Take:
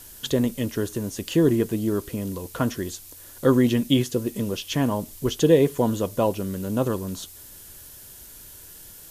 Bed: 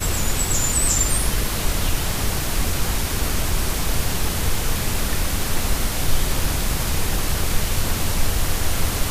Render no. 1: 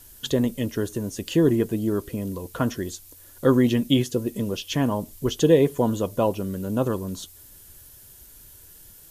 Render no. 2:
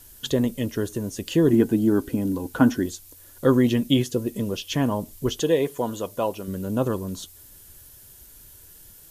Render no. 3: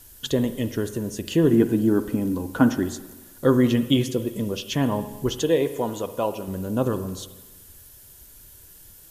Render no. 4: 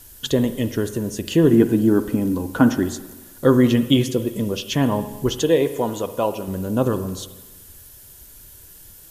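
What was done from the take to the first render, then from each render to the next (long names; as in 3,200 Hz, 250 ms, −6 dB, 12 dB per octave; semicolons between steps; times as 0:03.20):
broadband denoise 6 dB, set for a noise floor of −45 dBFS
0:01.53–0:02.86: hollow resonant body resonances 270/820/1,500 Hz, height 12 dB; 0:05.41–0:06.48: low-shelf EQ 340 Hz −10.5 dB
spring reverb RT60 1.2 s, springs 43/55 ms, chirp 70 ms, DRR 11 dB
level +3.5 dB; brickwall limiter −3 dBFS, peak gain reduction 1 dB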